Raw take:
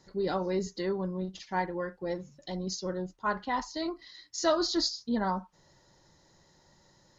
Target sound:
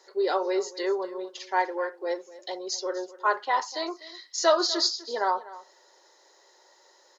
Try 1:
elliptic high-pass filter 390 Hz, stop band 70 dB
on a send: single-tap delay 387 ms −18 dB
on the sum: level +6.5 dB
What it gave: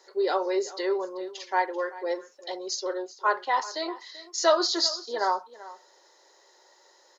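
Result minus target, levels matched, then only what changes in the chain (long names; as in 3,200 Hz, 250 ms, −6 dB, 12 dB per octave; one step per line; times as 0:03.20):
echo 139 ms late
change: single-tap delay 248 ms −18 dB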